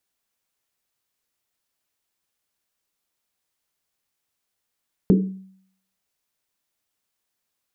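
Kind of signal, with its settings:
drum after Risset, pitch 190 Hz, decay 0.65 s, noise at 310 Hz, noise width 240 Hz, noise 25%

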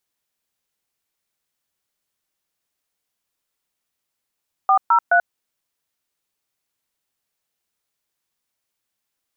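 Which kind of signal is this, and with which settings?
touch tones "403", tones 86 ms, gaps 126 ms, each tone −14 dBFS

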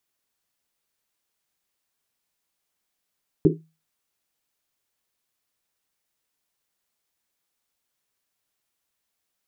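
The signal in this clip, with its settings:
drum after Risset, pitch 160 Hz, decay 0.31 s, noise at 350 Hz, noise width 140 Hz, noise 70%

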